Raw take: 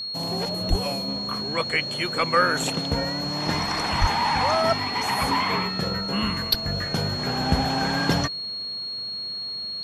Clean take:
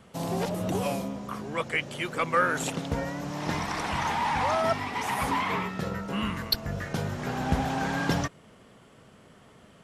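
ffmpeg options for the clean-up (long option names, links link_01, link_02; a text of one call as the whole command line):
ffmpeg -i in.wav -filter_complex "[0:a]bandreject=frequency=4300:width=30,asplit=3[link_01][link_02][link_03];[link_01]afade=type=out:start_time=0.69:duration=0.02[link_04];[link_02]highpass=frequency=140:width=0.5412,highpass=frequency=140:width=1.3066,afade=type=in:start_time=0.69:duration=0.02,afade=type=out:start_time=0.81:duration=0.02[link_05];[link_03]afade=type=in:start_time=0.81:duration=0.02[link_06];[link_04][link_05][link_06]amix=inputs=3:normalize=0,asplit=3[link_07][link_08][link_09];[link_07]afade=type=out:start_time=4:duration=0.02[link_10];[link_08]highpass=frequency=140:width=0.5412,highpass=frequency=140:width=1.3066,afade=type=in:start_time=4:duration=0.02,afade=type=out:start_time=4.12:duration=0.02[link_11];[link_09]afade=type=in:start_time=4.12:duration=0.02[link_12];[link_10][link_11][link_12]amix=inputs=3:normalize=0,asetnsamples=nb_out_samples=441:pad=0,asendcmd='1.08 volume volume -4dB',volume=0dB" out.wav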